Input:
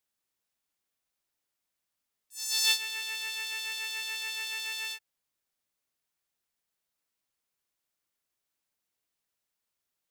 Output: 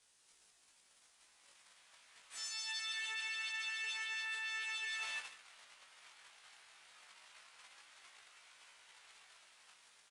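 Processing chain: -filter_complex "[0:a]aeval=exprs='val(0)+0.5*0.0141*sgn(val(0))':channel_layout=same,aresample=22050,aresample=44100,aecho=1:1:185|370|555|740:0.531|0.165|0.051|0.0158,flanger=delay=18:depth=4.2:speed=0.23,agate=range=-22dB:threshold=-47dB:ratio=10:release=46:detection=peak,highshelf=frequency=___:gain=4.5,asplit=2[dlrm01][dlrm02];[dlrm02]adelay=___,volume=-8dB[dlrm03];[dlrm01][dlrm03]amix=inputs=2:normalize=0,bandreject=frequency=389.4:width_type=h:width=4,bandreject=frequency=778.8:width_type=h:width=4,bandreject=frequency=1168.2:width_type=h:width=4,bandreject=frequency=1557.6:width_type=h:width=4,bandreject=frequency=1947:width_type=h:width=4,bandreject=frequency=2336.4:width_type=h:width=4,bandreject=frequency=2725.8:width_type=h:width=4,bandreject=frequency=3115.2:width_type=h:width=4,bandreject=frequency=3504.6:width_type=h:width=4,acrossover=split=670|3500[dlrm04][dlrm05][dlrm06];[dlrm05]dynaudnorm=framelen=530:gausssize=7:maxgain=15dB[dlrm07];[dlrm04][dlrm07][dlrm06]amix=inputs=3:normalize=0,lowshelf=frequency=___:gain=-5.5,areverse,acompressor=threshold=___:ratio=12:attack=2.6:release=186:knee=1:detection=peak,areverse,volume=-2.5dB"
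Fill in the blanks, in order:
4400, 16, 470, -35dB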